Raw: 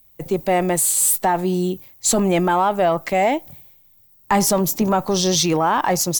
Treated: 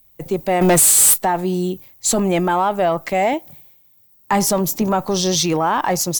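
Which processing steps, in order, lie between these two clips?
0:00.61–0:01.14: leveller curve on the samples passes 3
0:03.33–0:04.33: high-pass filter 120 Hz 12 dB per octave

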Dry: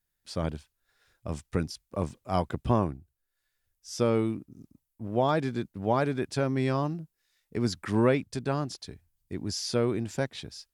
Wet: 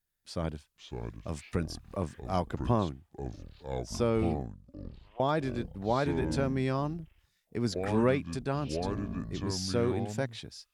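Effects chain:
0:04.46–0:05.20: four-pole ladder band-pass 1,100 Hz, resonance 60%
delay with pitch and tempo change per echo 406 ms, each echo −6 semitones, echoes 3, each echo −6 dB
0:01.28–0:02.20: one half of a high-frequency compander encoder only
level −3 dB

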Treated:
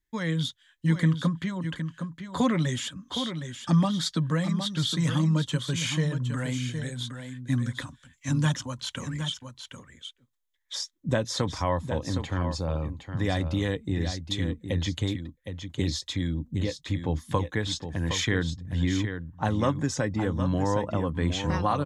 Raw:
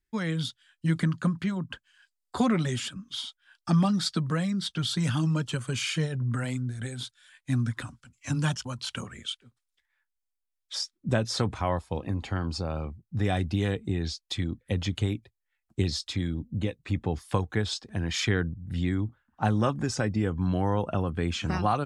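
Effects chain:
EQ curve with evenly spaced ripples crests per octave 1.1, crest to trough 6 dB
on a send: single-tap delay 764 ms −8.5 dB

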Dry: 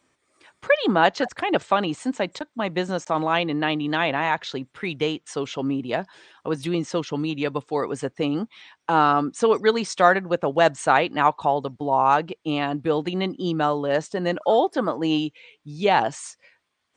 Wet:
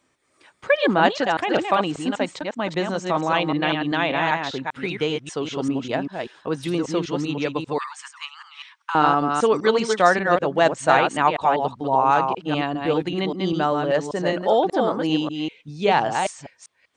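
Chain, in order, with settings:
delay that plays each chunk backwards 196 ms, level −4.5 dB
0:07.78–0:08.95: Butterworth high-pass 950 Hz 72 dB per octave

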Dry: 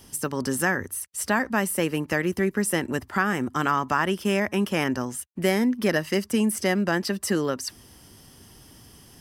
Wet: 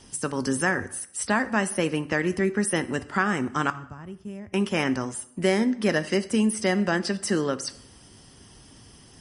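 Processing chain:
0:02.04–0:02.65: low-pass that shuts in the quiet parts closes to 3,000 Hz, open at −23.5 dBFS
0:03.70–0:04.54: drawn EQ curve 110 Hz 0 dB, 220 Hz −13 dB, 1,500 Hz −25 dB, 4,900 Hz −25 dB, 9,500 Hz −19 dB
dense smooth reverb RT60 0.72 s, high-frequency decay 0.8×, DRR 13 dB
MP3 40 kbit/s 32,000 Hz

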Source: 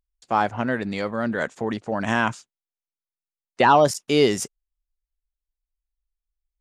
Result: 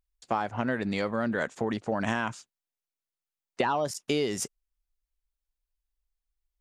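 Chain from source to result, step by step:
downward compressor 12 to 1, threshold −24 dBFS, peak gain reduction 13 dB

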